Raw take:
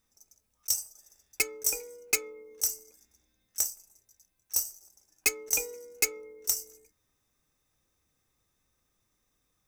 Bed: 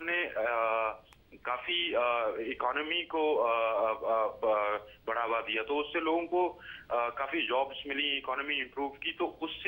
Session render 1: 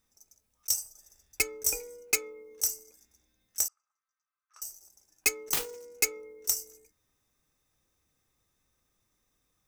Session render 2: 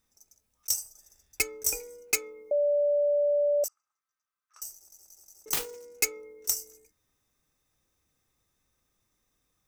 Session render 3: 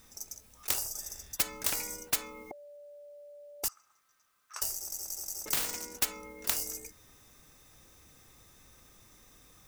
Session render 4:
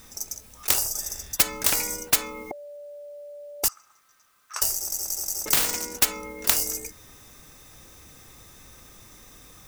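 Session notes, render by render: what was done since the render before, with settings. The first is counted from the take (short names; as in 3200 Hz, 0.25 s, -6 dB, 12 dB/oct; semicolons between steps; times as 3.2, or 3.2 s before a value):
0.84–2.02 low shelf 120 Hz +8.5 dB; 3.68–4.62 ladder band-pass 1300 Hz, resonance 85%; 5.53–5.99 self-modulated delay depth 0.84 ms
2.51–3.64 bleep 582 Hz -21.5 dBFS; 4.74 stutter in place 0.18 s, 4 plays
spectral compressor 10:1
gain +9.5 dB; limiter -3 dBFS, peak gain reduction 1 dB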